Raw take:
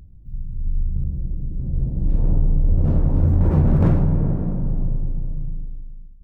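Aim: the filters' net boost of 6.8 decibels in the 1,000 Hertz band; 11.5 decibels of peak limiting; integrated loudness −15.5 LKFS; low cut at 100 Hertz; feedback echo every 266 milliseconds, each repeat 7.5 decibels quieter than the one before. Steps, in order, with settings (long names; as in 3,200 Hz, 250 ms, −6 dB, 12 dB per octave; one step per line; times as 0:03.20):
high-pass filter 100 Hz
parametric band 1,000 Hz +8.5 dB
brickwall limiter −15.5 dBFS
repeating echo 266 ms, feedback 42%, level −7.5 dB
level +10.5 dB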